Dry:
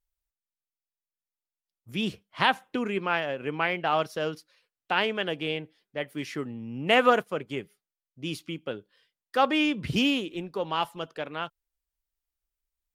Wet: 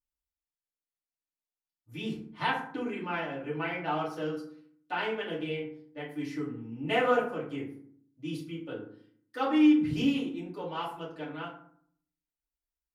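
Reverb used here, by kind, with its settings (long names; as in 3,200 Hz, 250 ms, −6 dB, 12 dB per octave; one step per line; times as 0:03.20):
feedback delay network reverb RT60 0.59 s, low-frequency decay 1.45×, high-frequency decay 0.5×, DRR −8.5 dB
level −15.5 dB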